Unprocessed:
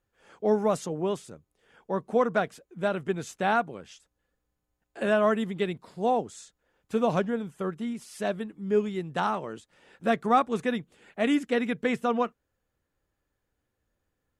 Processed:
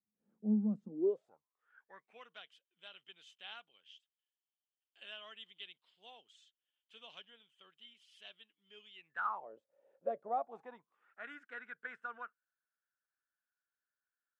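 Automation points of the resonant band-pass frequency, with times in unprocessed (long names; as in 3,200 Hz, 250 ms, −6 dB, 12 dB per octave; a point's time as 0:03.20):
resonant band-pass, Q 11
0:00.86 210 Hz
0:01.32 830 Hz
0:02.30 3,100 Hz
0:08.94 3,100 Hz
0:09.53 560 Hz
0:10.21 560 Hz
0:11.25 1,500 Hz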